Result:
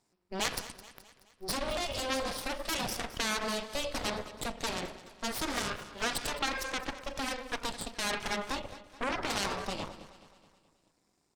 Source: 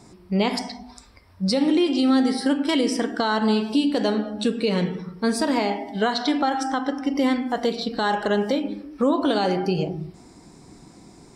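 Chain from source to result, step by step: bass shelf 450 Hz -9.5 dB; Chebyshev shaper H 3 -9 dB, 8 -19 dB, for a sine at -11 dBFS; feedback delay 213 ms, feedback 52%, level -16 dB

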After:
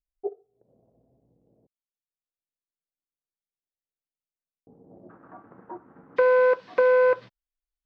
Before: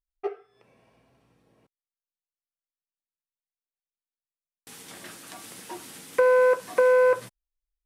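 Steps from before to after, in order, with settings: steep low-pass 690 Hz 36 dB/octave, from 5.09 s 1.4 kHz, from 6.16 s 4.7 kHz; transient shaper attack 0 dB, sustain -6 dB

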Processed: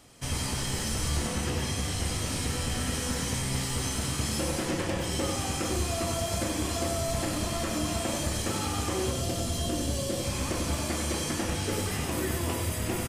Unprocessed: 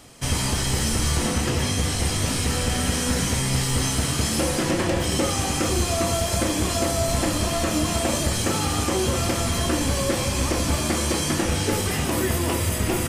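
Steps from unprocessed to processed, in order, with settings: time-frequency box 9.12–10.25 s, 760–2700 Hz -7 dB; on a send: delay 96 ms -6 dB; on the sum: trim -8 dB

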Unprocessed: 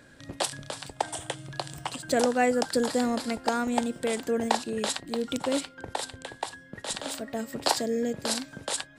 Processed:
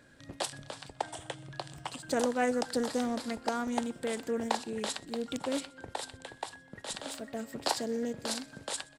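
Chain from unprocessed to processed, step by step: 0.51–1.85 s: treble shelf 8.7 kHz -8.5 dB; feedback delay 125 ms, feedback 52%, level -24 dB; loudspeaker Doppler distortion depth 0.16 ms; trim -5.5 dB

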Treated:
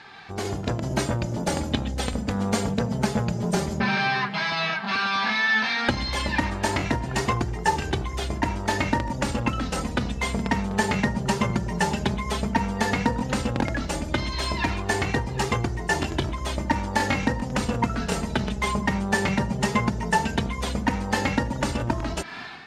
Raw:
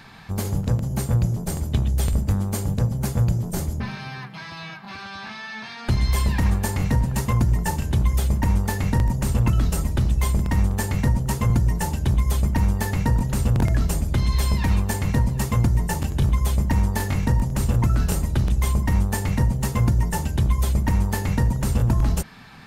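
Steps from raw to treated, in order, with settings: flange 0.13 Hz, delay 2.4 ms, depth 2.8 ms, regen +31%; compression, threshold -29 dBFS, peak gain reduction 11.5 dB; high-pass 390 Hz 6 dB/octave; level rider gain up to 11 dB; low-pass 4.9 kHz 12 dB/octave; band-stop 1.1 kHz, Q 16; trim +5.5 dB

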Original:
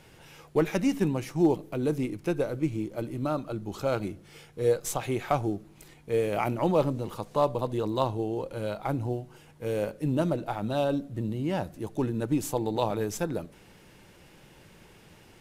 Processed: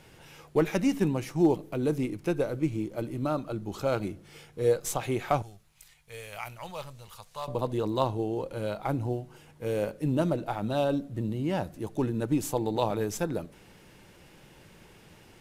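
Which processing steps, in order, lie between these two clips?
5.42–7.48 s: amplifier tone stack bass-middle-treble 10-0-10

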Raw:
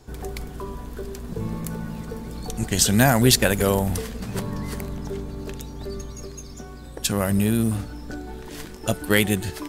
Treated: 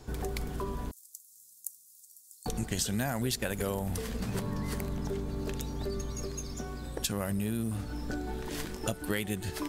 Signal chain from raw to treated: 0.91–2.46 s: inverse Chebyshev high-pass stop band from 2.1 kHz, stop band 60 dB; compression 5:1, threshold -30 dBFS, peak gain reduction 16.5 dB

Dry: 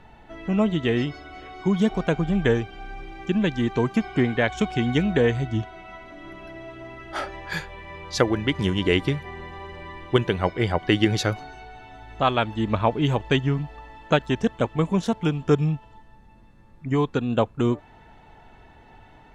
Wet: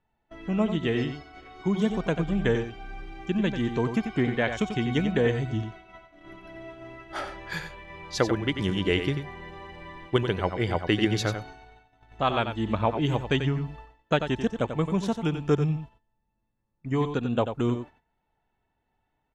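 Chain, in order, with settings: gate -40 dBFS, range -23 dB; delay 91 ms -8.5 dB; trim -4 dB

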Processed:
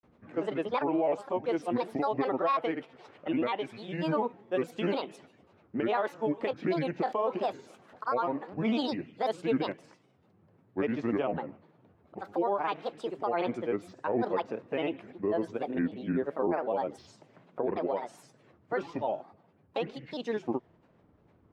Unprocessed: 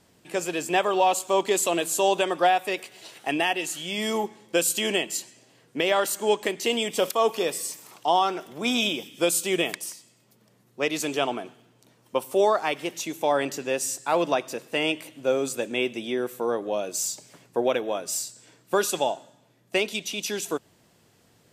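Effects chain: low-pass 1.4 kHz 12 dB/octave; peak limiter -19.5 dBFS, peak gain reduction 8.5 dB; granulator, spray 37 ms, pitch spread up and down by 7 st

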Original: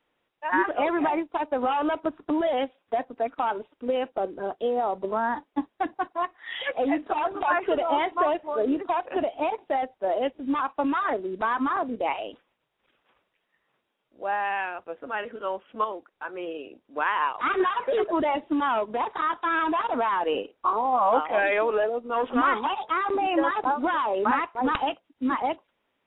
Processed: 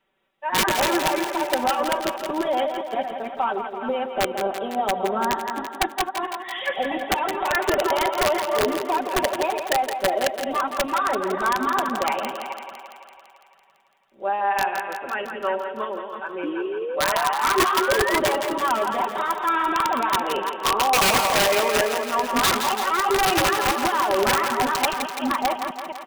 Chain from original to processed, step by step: chunks repeated in reverse 216 ms, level -7 dB; comb 5.2 ms, depth 82%; integer overflow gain 13.5 dB; on a send: thinning echo 168 ms, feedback 68%, high-pass 260 Hz, level -7.5 dB; on the sum: painted sound rise, 16.43–18.19 s, 290–2100 Hz -28 dBFS

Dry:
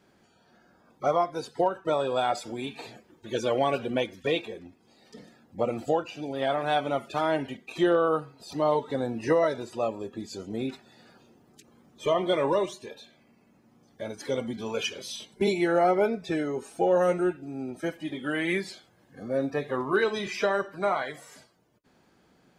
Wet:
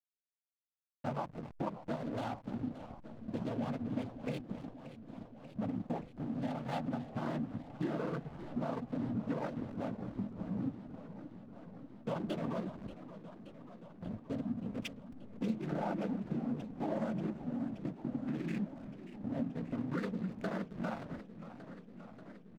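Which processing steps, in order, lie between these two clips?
local Wiener filter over 41 samples; noise-vocoded speech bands 16; resonant low shelf 300 Hz +7 dB, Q 3; delay 265 ms -16 dB; hysteresis with a dead band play -31 dBFS; compression 2.5:1, threshold -34 dBFS, peak gain reduction 13.5 dB; modulated delay 581 ms, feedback 75%, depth 181 cents, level -13.5 dB; trim -3.5 dB

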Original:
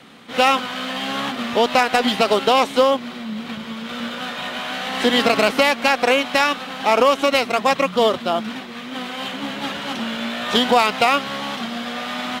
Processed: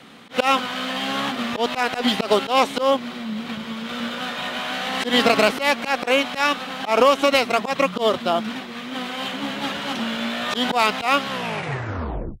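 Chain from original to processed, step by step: tape stop on the ending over 1.13 s; slow attack 108 ms

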